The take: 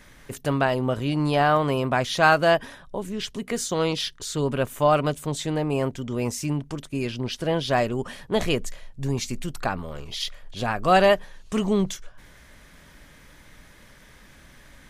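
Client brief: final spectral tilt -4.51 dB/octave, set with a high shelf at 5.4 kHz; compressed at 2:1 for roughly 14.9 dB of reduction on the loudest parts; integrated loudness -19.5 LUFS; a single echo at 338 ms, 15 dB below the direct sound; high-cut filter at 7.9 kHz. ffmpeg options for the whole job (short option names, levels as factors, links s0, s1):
-af "lowpass=7900,highshelf=f=5400:g=-5.5,acompressor=threshold=0.00794:ratio=2,aecho=1:1:338:0.178,volume=7.5"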